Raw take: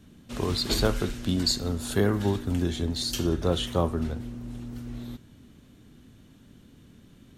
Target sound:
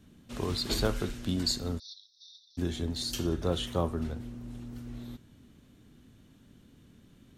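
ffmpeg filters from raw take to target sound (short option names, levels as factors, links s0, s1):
-filter_complex "[0:a]asplit=3[s0][s1][s2];[s0]afade=t=out:st=1.78:d=0.02[s3];[s1]asuperpass=centerf=4600:order=20:qfactor=1.9,afade=t=in:st=1.78:d=0.02,afade=t=out:st=2.57:d=0.02[s4];[s2]afade=t=in:st=2.57:d=0.02[s5];[s3][s4][s5]amix=inputs=3:normalize=0,volume=0.596"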